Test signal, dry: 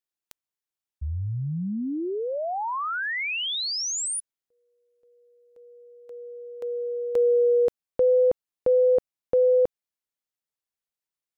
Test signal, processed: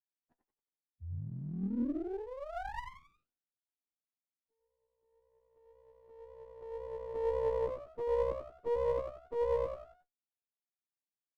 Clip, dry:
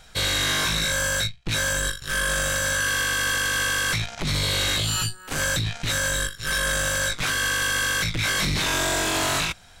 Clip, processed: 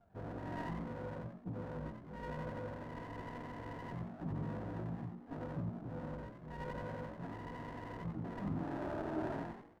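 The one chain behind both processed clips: inharmonic rescaling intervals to 91%; HPF 65 Hz 12 dB/oct; flange 1.9 Hz, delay 9.8 ms, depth 3.3 ms, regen +52%; rippled Chebyshev low-pass 990 Hz, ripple 9 dB; frequency-shifting echo 90 ms, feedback 37%, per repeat +62 Hz, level -6.5 dB; running maximum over 17 samples

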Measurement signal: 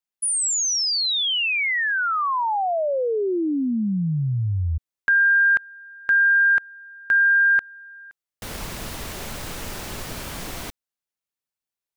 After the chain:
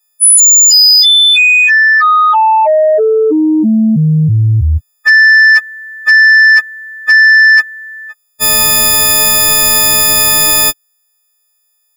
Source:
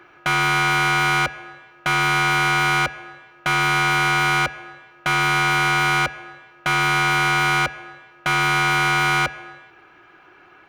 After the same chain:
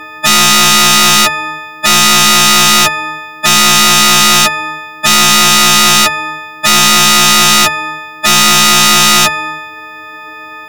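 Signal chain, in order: frequency quantiser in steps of 6 st; sine folder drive 11 dB, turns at -3 dBFS; harmonic-percussive split percussive -6 dB

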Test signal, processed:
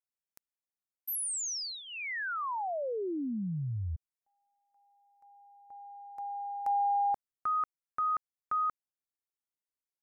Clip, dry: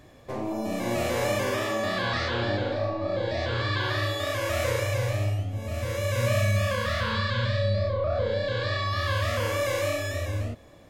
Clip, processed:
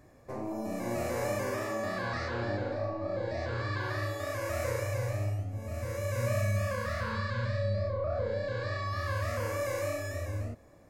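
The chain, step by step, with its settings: bell 3300 Hz -14.5 dB 0.56 oct; gain -5.5 dB

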